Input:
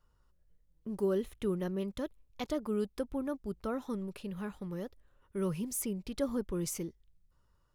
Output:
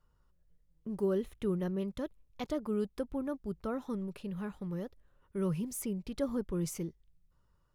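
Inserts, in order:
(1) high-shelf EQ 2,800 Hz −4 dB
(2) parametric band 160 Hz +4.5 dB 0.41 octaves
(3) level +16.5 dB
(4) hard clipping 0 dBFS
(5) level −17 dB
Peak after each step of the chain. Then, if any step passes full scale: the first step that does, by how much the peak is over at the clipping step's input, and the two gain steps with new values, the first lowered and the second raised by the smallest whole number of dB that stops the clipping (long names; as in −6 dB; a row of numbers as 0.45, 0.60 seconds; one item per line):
−20.5, −20.5, −4.0, −4.0, −21.0 dBFS
no step passes full scale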